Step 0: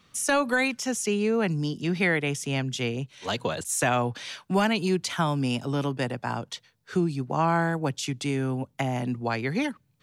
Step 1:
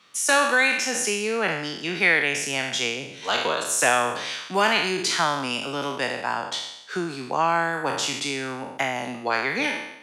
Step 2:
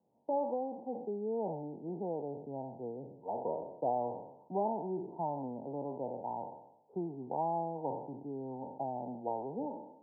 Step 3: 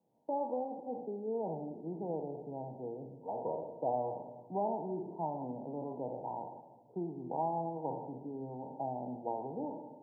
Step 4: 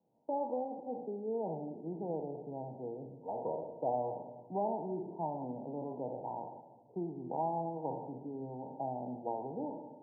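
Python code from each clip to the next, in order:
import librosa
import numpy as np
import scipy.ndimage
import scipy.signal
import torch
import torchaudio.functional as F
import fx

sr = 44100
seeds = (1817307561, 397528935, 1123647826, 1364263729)

y1 = fx.spec_trails(x, sr, decay_s=0.83)
y1 = fx.weighting(y1, sr, curve='A')
y1 = y1 * 10.0 ** (3.0 / 20.0)
y2 = scipy.signal.sosfilt(scipy.signal.cheby1(8, 1.0, 930.0, 'lowpass', fs=sr, output='sos'), y1)
y2 = y2 * 10.0 ** (-8.5 / 20.0)
y3 = fx.room_shoebox(y2, sr, seeds[0], volume_m3=1000.0, walls='mixed', distance_m=0.6)
y3 = y3 * 10.0 ** (-1.5 / 20.0)
y4 = scipy.signal.sosfilt(scipy.signal.butter(4, 1100.0, 'lowpass', fs=sr, output='sos'), y3)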